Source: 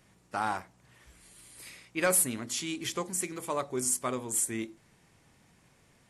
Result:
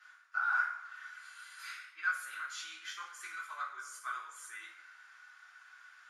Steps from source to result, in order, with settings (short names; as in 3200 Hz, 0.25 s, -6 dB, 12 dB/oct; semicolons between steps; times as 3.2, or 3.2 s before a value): reverse; compressor 8:1, threshold -42 dBFS, peak gain reduction 20 dB; reverse; ladder high-pass 1400 Hz, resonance 85%; reverb RT60 1.1 s, pre-delay 3 ms, DRR -7.5 dB